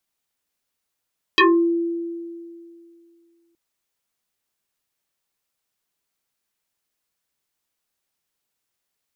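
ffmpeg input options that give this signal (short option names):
-f lavfi -i "aevalsrc='0.335*pow(10,-3*t/2.45)*sin(2*PI*338*t+5.7*pow(10,-3*t/0.32)*sin(2*PI*2.13*338*t))':d=2.17:s=44100"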